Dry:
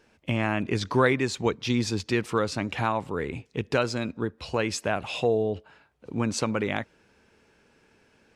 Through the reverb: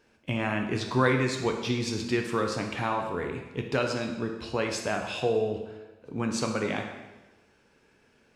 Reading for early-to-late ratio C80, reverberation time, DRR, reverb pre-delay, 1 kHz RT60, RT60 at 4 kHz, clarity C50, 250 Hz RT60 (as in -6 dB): 7.5 dB, 1.1 s, 2.5 dB, 6 ms, 1.1 s, 1.0 s, 5.5 dB, 1.1 s